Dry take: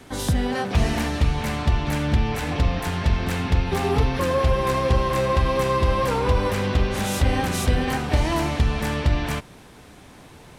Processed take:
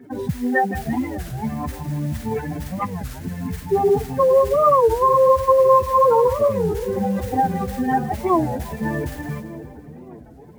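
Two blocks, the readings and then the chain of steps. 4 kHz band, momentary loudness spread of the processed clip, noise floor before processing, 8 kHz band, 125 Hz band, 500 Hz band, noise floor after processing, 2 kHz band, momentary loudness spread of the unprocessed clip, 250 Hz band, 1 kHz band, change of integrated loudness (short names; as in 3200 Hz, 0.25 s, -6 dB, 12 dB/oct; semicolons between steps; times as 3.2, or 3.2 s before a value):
under -10 dB, 14 LU, -46 dBFS, n/a, -5.5 dB, +7.5 dB, -42 dBFS, -3.5 dB, 3 LU, +1.5 dB, +6.5 dB, +3.0 dB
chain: spectral contrast raised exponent 3.2; bell 280 Hz -8.5 dB 0.2 oct; modulation noise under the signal 32 dB; HPF 220 Hz 12 dB/oct; bell 1800 Hz +9 dB 0.68 oct; on a send: split-band echo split 620 Hz, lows 0.587 s, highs 0.168 s, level -12.5 dB; on the sum: record warp 33 1/3 rpm, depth 250 cents; gain +8 dB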